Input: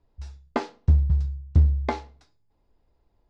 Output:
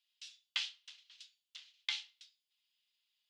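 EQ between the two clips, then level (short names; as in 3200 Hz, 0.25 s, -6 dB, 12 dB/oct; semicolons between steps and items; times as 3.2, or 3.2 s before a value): ladder high-pass 2800 Hz, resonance 65%; +12.0 dB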